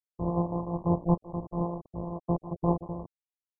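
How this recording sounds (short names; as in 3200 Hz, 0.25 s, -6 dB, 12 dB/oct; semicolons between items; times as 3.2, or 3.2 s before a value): a buzz of ramps at a fixed pitch in blocks of 256 samples; tremolo triangle 5.7 Hz, depth 60%; a quantiser's noise floor 8-bit, dither none; MP2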